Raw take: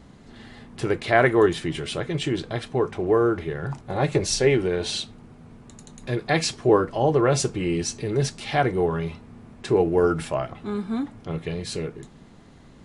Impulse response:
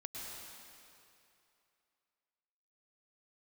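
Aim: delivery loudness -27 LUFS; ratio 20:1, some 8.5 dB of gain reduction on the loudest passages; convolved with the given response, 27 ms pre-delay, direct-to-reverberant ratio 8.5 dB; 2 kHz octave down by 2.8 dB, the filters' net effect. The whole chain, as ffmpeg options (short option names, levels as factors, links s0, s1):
-filter_complex "[0:a]equalizer=f=2000:t=o:g=-3.5,acompressor=threshold=0.0891:ratio=20,asplit=2[s0][s1];[1:a]atrim=start_sample=2205,adelay=27[s2];[s1][s2]afir=irnorm=-1:irlink=0,volume=0.422[s3];[s0][s3]amix=inputs=2:normalize=0,volume=1.12"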